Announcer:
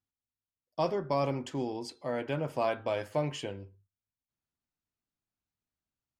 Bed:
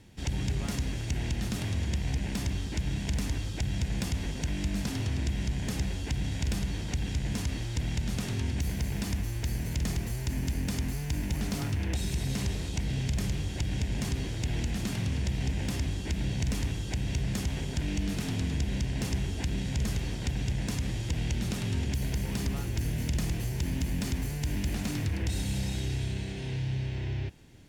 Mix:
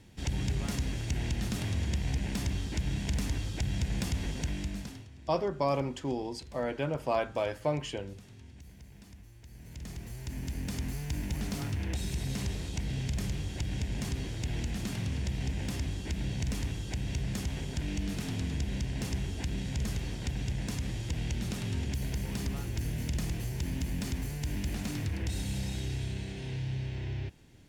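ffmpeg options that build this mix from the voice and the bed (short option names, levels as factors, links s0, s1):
-filter_complex "[0:a]adelay=4500,volume=1.06[s0];[1:a]volume=6.68,afade=t=out:st=4.39:d=0.68:silence=0.105925,afade=t=in:st=9.49:d=1.45:silence=0.133352[s1];[s0][s1]amix=inputs=2:normalize=0"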